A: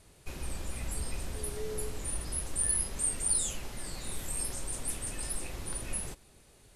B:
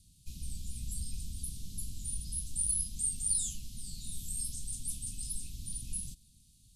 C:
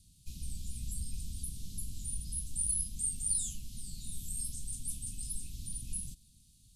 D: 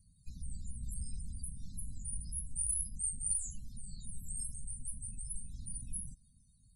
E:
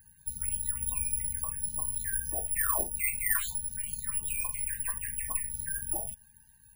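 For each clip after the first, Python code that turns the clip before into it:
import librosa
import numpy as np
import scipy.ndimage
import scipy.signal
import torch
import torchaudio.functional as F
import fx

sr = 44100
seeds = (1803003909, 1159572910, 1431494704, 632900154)

y1 = scipy.signal.sosfilt(scipy.signal.cheby2(4, 50, [460.0, 1700.0], 'bandstop', fs=sr, output='sos'), x)
y1 = F.gain(torch.from_numpy(y1), -2.0).numpy()
y2 = fx.dynamic_eq(y1, sr, hz=4700.0, q=0.87, threshold_db=-51.0, ratio=4.0, max_db=-4)
y3 = fx.spec_topn(y2, sr, count=32)
y3 = F.gain(torch.from_numpy(y3), -2.0).numpy()
y4 = (np.kron(y3[::4], np.eye(4)[0]) * 4)[:len(y3)]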